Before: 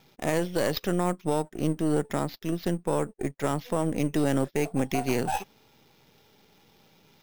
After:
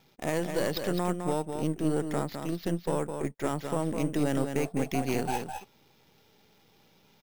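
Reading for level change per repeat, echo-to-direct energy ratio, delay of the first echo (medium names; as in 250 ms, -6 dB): no regular repeats, -6.5 dB, 209 ms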